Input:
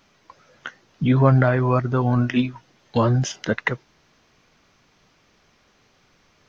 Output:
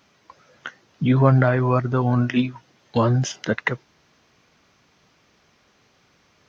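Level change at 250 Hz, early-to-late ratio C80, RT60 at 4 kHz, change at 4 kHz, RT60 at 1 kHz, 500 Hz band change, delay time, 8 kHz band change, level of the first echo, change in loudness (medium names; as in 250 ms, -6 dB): 0.0 dB, no reverb, no reverb, 0.0 dB, no reverb, 0.0 dB, no echo, no reading, no echo, 0.0 dB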